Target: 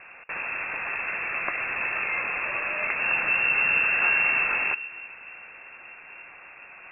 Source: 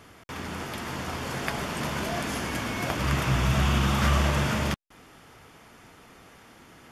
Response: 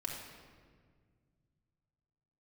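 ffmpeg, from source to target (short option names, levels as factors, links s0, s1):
-filter_complex "[0:a]asplit=2[s0][s1];[s1]acompressor=threshold=0.02:ratio=6,volume=1.33[s2];[s0][s2]amix=inputs=2:normalize=0,asettb=1/sr,asplit=3[s3][s4][s5];[s3]atrim=end=1.284[s6];[s4]atrim=start=1.28:end=1.69,asetpts=PTS-STARTPTS,afade=t=in:d=0.004:c=qsin,afade=t=out:st=0.406:d=0.004:c=qsin,bandreject=f=1900:w=18[s7];[s5]atrim=start=1.686[s8];[s6][s7]acrossfade=d=0.004:c1=hsin:c2=qsin[s9];[s9][s8]acrossfade=d=0.004:c1=qsin:c2=hsin,asplit=2[s10][s11];[1:a]atrim=start_sample=2205,asetrate=24255,aresample=44100[s12];[s11][s12]afir=irnorm=-1:irlink=0,volume=0.126[s13];[s10][s13]amix=inputs=2:normalize=0,lowpass=f=2400:t=q:w=0.5098,lowpass=f=2400:t=q:w=0.6013,lowpass=f=2400:t=q:w=0.9,lowpass=f=2400:t=q:w=2.563,afreqshift=-2800,volume=0.708"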